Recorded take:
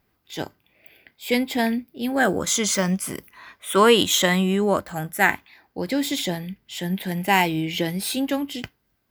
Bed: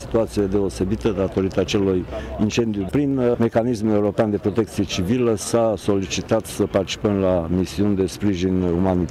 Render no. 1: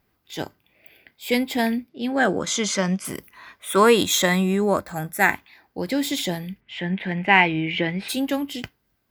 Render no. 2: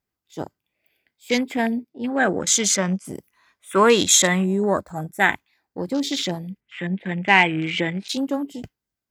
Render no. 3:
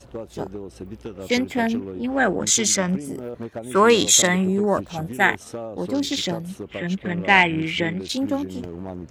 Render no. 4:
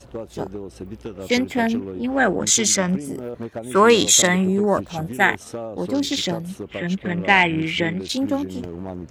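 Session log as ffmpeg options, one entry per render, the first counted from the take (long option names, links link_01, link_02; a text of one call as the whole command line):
ffmpeg -i in.wav -filter_complex "[0:a]asettb=1/sr,asplit=3[link_01][link_02][link_03];[link_01]atrim=end=1.884[link_04];[link_02]atrim=start=1.88:end=3.05,asetpts=PTS-STARTPTS,afade=type=in:duration=0.004:curve=qsin,afade=type=out:start_time=1.166:duration=0.004:curve=qsin,highpass=110,lowpass=6200[link_05];[link_03]atrim=start=3.046[link_06];[link_04][link_05]acrossfade=duration=0.004:curve1=hsin:curve2=qsin[link_07];[link_07][link_06]acrossfade=duration=0.004:curve1=qsin:curve2=hsin,asettb=1/sr,asplit=3[link_08][link_09][link_10];[link_08]atrim=end=3.684[link_11];[link_09]atrim=start=3.68:end=5.34,asetpts=PTS-STARTPTS,afade=type=in:duration=0.004:curve=qsin,afade=type=out:start_time=1.656:duration=0.004:curve=qsin,asuperstop=centerf=3000:order=4:qfactor=7.4[link_12];[link_10]atrim=start=5.336[link_13];[link_11][link_12]acrossfade=duration=0.004:curve1=hsin:curve2=qsin[link_14];[link_14][link_13]acrossfade=duration=0.004:curve1=qsin:curve2=hsin,asplit=3[link_15][link_16][link_17];[link_15]afade=type=out:start_time=6.6:duration=0.02[link_18];[link_16]lowpass=frequency=2300:width_type=q:width=2.1,afade=type=in:start_time=6.6:duration=0.02,afade=type=out:start_time=8.08:duration=0.02[link_19];[link_17]afade=type=in:start_time=8.08:duration=0.02[link_20];[link_18][link_19][link_20]amix=inputs=3:normalize=0" out.wav
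ffmpeg -i in.wav -af "afwtdn=0.0251,equalizer=frequency=7500:width=1:gain=10.5" out.wav
ffmpeg -i in.wav -i bed.wav -filter_complex "[1:a]volume=-14.5dB[link_01];[0:a][link_01]amix=inputs=2:normalize=0" out.wav
ffmpeg -i in.wav -af "volume=1.5dB,alimiter=limit=-3dB:level=0:latency=1" out.wav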